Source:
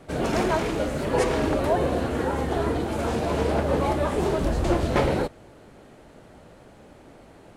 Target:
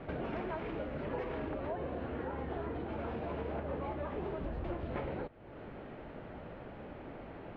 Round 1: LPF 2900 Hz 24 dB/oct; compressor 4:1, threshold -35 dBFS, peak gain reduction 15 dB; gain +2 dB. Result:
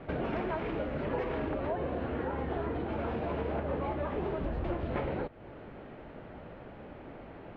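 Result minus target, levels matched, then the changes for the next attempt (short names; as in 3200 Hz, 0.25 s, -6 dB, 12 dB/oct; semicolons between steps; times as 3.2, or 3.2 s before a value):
compressor: peak gain reduction -5 dB
change: compressor 4:1, threshold -41.5 dBFS, peak gain reduction 20 dB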